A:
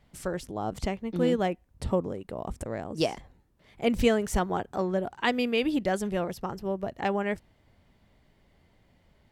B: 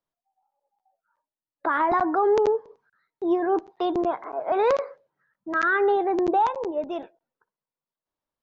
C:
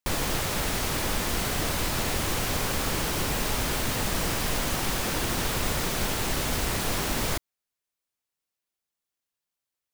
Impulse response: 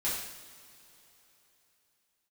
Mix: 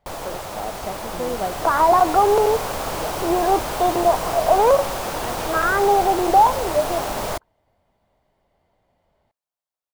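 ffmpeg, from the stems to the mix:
-filter_complex "[0:a]volume=-8dB[link_01];[1:a]volume=-3dB,asplit=2[link_02][link_03];[2:a]dynaudnorm=framelen=370:gausssize=9:maxgain=5.5dB,volume=-8.5dB[link_04];[link_03]apad=whole_len=410659[link_05];[link_01][link_05]sidechaincompress=threshold=-42dB:ratio=8:attack=16:release=588[link_06];[link_06][link_02][link_04]amix=inputs=3:normalize=0,firequalizer=gain_entry='entry(240,0);entry(660,13);entry(1800,1)':delay=0.05:min_phase=1"

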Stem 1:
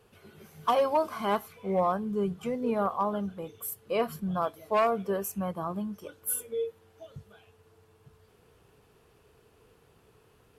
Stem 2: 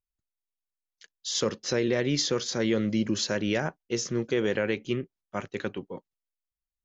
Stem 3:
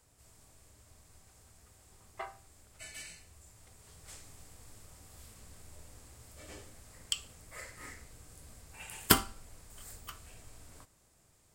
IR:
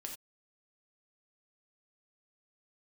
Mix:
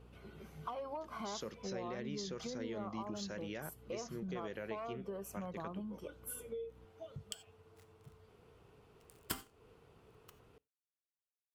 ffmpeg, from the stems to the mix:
-filter_complex "[0:a]lowpass=frequency=3300:poles=1,bandreject=frequency=1700:width=11,acompressor=threshold=-33dB:ratio=10,volume=-2dB,asplit=2[link_01][link_02];[link_02]volume=-18.5dB[link_03];[1:a]aeval=exprs='val(0)+0.00447*(sin(2*PI*60*n/s)+sin(2*PI*2*60*n/s)/2+sin(2*PI*3*60*n/s)/3+sin(2*PI*4*60*n/s)/4+sin(2*PI*5*60*n/s)/5)':channel_layout=same,volume=-11.5dB[link_04];[2:a]aeval=exprs='sgn(val(0))*max(abs(val(0))-0.0106,0)':channel_layout=same,adelay=200,volume=-9dB,asplit=2[link_05][link_06];[link_06]volume=-5dB[link_07];[3:a]atrim=start_sample=2205[link_08];[link_03][link_07]amix=inputs=2:normalize=0[link_09];[link_09][link_08]afir=irnorm=-1:irlink=0[link_10];[link_01][link_04][link_05][link_10]amix=inputs=4:normalize=0,acompressor=threshold=-44dB:ratio=2"

